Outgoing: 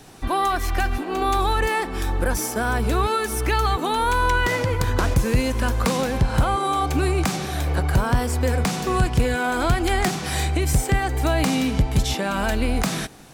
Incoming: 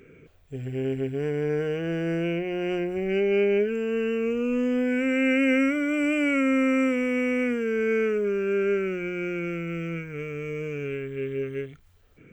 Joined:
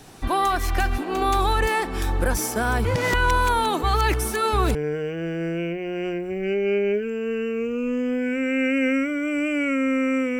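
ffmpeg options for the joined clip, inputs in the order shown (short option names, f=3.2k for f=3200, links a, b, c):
-filter_complex "[0:a]apad=whole_dur=10.39,atrim=end=10.39,asplit=2[a][b];[a]atrim=end=2.852[c];[b]atrim=start=2.848:end=4.752,asetpts=PTS-STARTPTS,areverse[d];[1:a]atrim=start=1.408:end=7.05[e];[c][d]acrossfade=d=0.004:c1=hsin:c2=hsin[f];[f][e]acrossfade=d=0.004:c1=hsin:c2=hsin"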